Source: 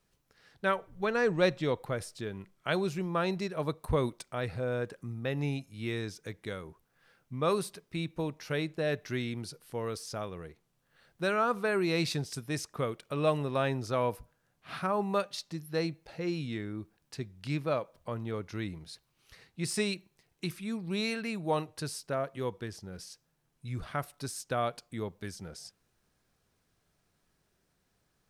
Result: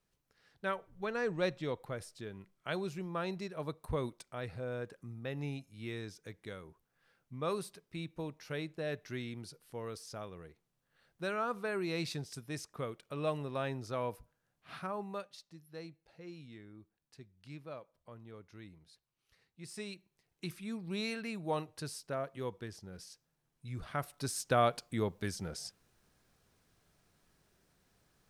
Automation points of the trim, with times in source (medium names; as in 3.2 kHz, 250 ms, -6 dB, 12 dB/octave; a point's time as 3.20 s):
14.74 s -7 dB
15.49 s -15.5 dB
19.60 s -15.5 dB
20.54 s -5 dB
23.76 s -5 dB
24.46 s +3 dB